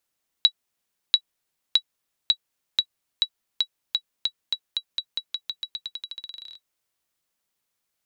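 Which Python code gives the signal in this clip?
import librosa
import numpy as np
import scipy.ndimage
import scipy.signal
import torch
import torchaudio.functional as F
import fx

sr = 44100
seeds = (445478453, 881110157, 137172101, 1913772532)

y = fx.bouncing_ball(sr, first_gap_s=0.69, ratio=0.89, hz=3900.0, decay_ms=68.0, level_db=-4.5)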